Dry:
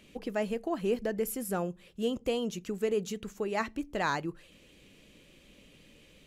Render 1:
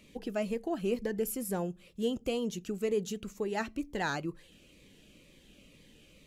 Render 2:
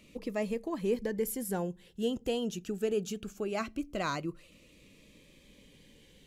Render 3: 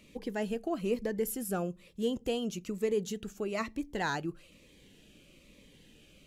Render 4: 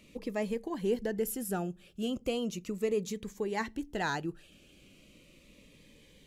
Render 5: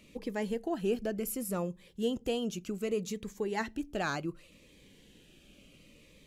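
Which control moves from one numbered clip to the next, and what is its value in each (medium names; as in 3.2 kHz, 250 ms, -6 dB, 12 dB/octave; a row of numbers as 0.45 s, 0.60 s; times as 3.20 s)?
Shepard-style phaser, rate: 2.1 Hz, 0.22 Hz, 1.1 Hz, 0.37 Hz, 0.67 Hz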